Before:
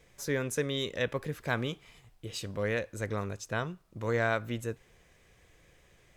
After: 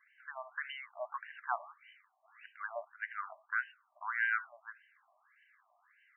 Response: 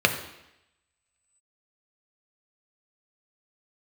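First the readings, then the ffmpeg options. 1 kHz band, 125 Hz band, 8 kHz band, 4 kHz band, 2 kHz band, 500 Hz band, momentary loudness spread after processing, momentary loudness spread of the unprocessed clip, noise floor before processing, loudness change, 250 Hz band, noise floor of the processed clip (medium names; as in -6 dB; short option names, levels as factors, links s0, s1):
-1.0 dB, under -40 dB, under -35 dB, -15.0 dB, -0.5 dB, -16.0 dB, 21 LU, 10 LU, -63 dBFS, -5.5 dB, under -40 dB, -75 dBFS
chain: -filter_complex "[0:a]asplit=2[s0][s1];[s1]highpass=470,lowpass=4800[s2];[1:a]atrim=start_sample=2205,afade=t=out:st=0.15:d=0.01,atrim=end_sample=7056[s3];[s2][s3]afir=irnorm=-1:irlink=0,volume=0.0891[s4];[s0][s4]amix=inputs=2:normalize=0,afftfilt=real='re*between(b*sr/1024,830*pow(2200/830,0.5+0.5*sin(2*PI*1.7*pts/sr))/1.41,830*pow(2200/830,0.5+0.5*sin(2*PI*1.7*pts/sr))*1.41)':imag='im*between(b*sr/1024,830*pow(2200/830,0.5+0.5*sin(2*PI*1.7*pts/sr))/1.41,830*pow(2200/830,0.5+0.5*sin(2*PI*1.7*pts/sr))*1.41)':win_size=1024:overlap=0.75,volume=1.12"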